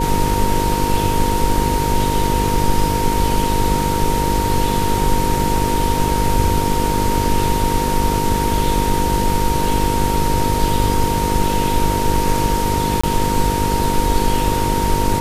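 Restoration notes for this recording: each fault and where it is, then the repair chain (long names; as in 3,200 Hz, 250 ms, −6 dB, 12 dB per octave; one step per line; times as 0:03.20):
mains buzz 50 Hz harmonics 10 −22 dBFS
whistle 930 Hz −20 dBFS
0:13.01–0:13.04: drop-out 25 ms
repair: hum removal 50 Hz, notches 10
notch filter 930 Hz, Q 30
repair the gap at 0:13.01, 25 ms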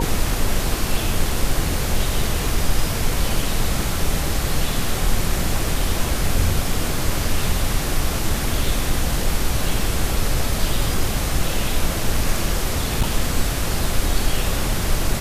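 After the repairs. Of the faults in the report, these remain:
none of them is left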